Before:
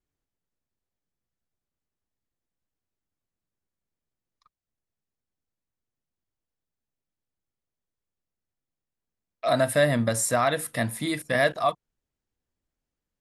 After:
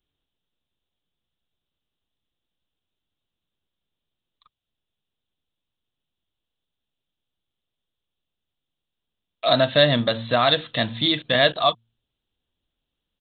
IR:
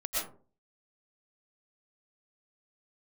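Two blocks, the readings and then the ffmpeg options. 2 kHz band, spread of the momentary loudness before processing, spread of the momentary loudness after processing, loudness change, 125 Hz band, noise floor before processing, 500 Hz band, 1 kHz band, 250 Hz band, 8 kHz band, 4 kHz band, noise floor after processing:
+3.0 dB, 7 LU, 7 LU, +4.5 dB, +2.5 dB, below −85 dBFS, +3.5 dB, +3.5 dB, +3.0 dB, below −35 dB, +14.5 dB, −84 dBFS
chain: -af "bandreject=frequency=114.5:width_type=h:width=4,bandreject=frequency=229:width_type=h:width=4,aresample=8000,aresample=44100,aexciter=amount=8.8:drive=3.6:freq=3100,volume=3.5dB"

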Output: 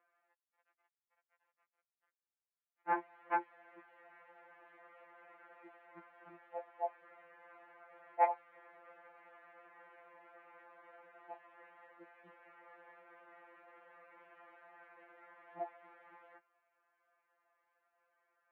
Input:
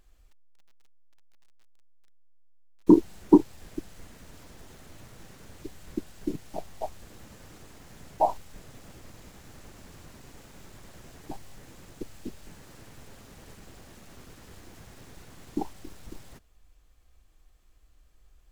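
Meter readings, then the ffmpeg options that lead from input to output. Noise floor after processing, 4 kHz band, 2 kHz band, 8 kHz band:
below −85 dBFS, below −20 dB, +3.5 dB, below −25 dB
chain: -af "asoftclip=type=hard:threshold=-18.5dB,highpass=frequency=590:width_type=q:width=0.5412,highpass=frequency=590:width_type=q:width=1.307,lowpass=frequency=2200:width_type=q:width=0.5176,lowpass=frequency=2200:width_type=q:width=0.7071,lowpass=frequency=2200:width_type=q:width=1.932,afreqshift=-61,afftfilt=real='re*2.83*eq(mod(b,8),0)':imag='im*2.83*eq(mod(b,8),0)':win_size=2048:overlap=0.75,volume=1dB"

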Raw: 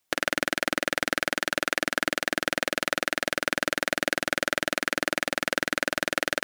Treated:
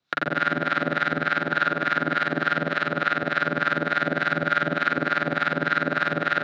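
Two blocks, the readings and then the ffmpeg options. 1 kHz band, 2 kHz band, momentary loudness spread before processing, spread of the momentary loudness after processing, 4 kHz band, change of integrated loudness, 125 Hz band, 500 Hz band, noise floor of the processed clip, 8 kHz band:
+7.0 dB, +3.5 dB, 1 LU, 2 LU, −5.0 dB, +3.5 dB, +11.0 dB, +2.0 dB, −32 dBFS, below −20 dB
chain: -filter_complex "[0:a]highpass=110,equalizer=frequency=150:width_type=q:width=4:gain=8,equalizer=frequency=1400:width_type=q:width=4:gain=10,equalizer=frequency=3900:width_type=q:width=4:gain=10,lowpass=frequency=5300:width=0.5412,lowpass=frequency=5300:width=1.3066,alimiter=limit=-4dB:level=0:latency=1,lowshelf=frequency=300:gain=7.5,asplit=2[link_01][link_02];[link_02]adelay=43,volume=-4dB[link_03];[link_01][link_03]amix=inputs=2:normalize=0,asplit=2[link_04][link_05];[link_05]aecho=0:1:88|176|264|352|440|528:0.631|0.29|0.134|0.0614|0.0283|0.013[link_06];[link_04][link_06]amix=inputs=2:normalize=0,acrossover=split=2500[link_07][link_08];[link_08]acompressor=threshold=-41dB:ratio=4:attack=1:release=60[link_09];[link_07][link_09]amix=inputs=2:normalize=0,acrossover=split=800[link_10][link_11];[link_10]aeval=exprs='val(0)*(1-0.7/2+0.7/2*cos(2*PI*3.4*n/s))':channel_layout=same[link_12];[link_11]aeval=exprs='val(0)*(1-0.7/2-0.7/2*cos(2*PI*3.4*n/s))':channel_layout=same[link_13];[link_12][link_13]amix=inputs=2:normalize=0,volume=2dB"

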